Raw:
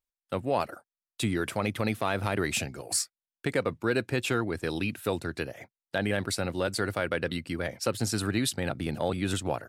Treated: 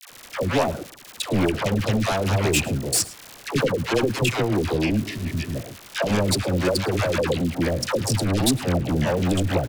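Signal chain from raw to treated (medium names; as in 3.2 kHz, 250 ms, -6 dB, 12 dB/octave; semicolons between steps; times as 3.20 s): local Wiener filter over 41 samples; crackle 220 per s -38 dBFS; in parallel at -10.5 dB: sine folder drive 15 dB, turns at -13 dBFS; on the sum: phase dispersion lows, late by 103 ms, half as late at 700 Hz; spectral replace 5.07–5.53 s, 270–1700 Hz before; on a send: delay 108 ms -19.5 dB; on the sum: trim +3 dB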